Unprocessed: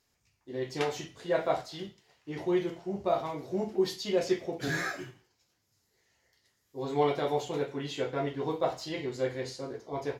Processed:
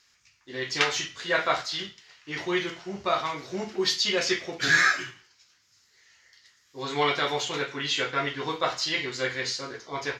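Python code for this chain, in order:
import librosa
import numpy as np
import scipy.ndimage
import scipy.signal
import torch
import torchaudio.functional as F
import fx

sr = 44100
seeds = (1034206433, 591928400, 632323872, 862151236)

y = fx.band_shelf(x, sr, hz=2800.0, db=15.0, octaves=3.0)
y = y * 10.0 ** (-1.0 / 20.0)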